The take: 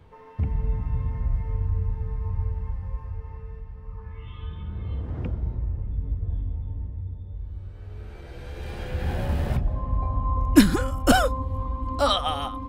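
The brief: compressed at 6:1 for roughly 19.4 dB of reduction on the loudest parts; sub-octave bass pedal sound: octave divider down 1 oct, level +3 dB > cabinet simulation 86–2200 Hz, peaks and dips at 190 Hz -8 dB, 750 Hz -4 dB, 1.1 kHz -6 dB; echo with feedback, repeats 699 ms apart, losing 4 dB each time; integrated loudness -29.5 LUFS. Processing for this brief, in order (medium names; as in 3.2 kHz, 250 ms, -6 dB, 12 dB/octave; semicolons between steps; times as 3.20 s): compression 6:1, threshold -30 dBFS; feedback delay 699 ms, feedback 63%, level -4 dB; octave divider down 1 oct, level +3 dB; cabinet simulation 86–2200 Hz, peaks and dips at 190 Hz -8 dB, 750 Hz -4 dB, 1.1 kHz -6 dB; trim +7 dB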